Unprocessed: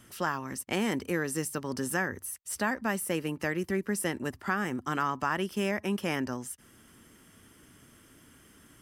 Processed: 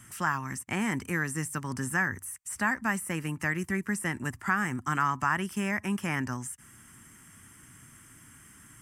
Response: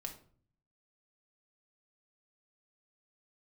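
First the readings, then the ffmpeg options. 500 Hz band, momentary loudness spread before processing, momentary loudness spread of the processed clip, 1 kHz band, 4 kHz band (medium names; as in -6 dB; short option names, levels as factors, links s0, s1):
-6.5 dB, 5 LU, 6 LU, +2.5 dB, -4.0 dB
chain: -filter_complex "[0:a]acrossover=split=2500[s0][s1];[s1]acompressor=threshold=0.00794:ratio=4:attack=1:release=60[s2];[s0][s2]amix=inputs=2:normalize=0,equalizer=f=125:t=o:w=1:g=7,equalizer=f=500:t=o:w=1:g=-11,equalizer=f=1000:t=o:w=1:g=4,equalizer=f=2000:t=o:w=1:g=6,equalizer=f=4000:t=o:w=1:g=-8,equalizer=f=8000:t=o:w=1:g=11"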